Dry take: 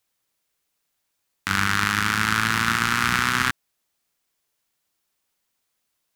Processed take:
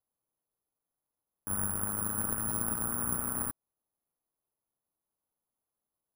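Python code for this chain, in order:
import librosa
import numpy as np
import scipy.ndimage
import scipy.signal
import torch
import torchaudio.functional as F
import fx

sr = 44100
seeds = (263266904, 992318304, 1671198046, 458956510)

y = fx.self_delay(x, sr, depth_ms=0.58)
y = scipy.signal.sosfilt(scipy.signal.butter(4, 1100.0, 'lowpass', fs=sr, output='sos'), y)
y = (np.kron(y[::4], np.eye(4)[0]) * 4)[:len(y)]
y = F.gain(torch.from_numpy(y), -7.5).numpy()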